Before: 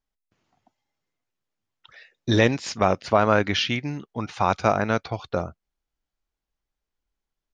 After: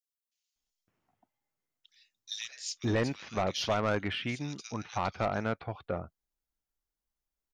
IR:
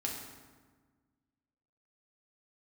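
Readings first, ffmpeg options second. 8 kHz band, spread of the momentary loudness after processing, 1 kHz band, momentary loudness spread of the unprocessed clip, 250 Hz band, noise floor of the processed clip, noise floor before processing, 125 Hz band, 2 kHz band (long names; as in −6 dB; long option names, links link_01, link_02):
−3.5 dB, 9 LU, −10.5 dB, 12 LU, −9.0 dB, below −85 dBFS, below −85 dBFS, −8.5 dB, −10.0 dB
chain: -filter_complex "[0:a]highshelf=frequency=6800:gain=9.5,acrossover=split=3000[link_01][link_02];[link_01]adelay=560[link_03];[link_03][link_02]amix=inputs=2:normalize=0,asoftclip=type=tanh:threshold=-14.5dB,volume=-7dB"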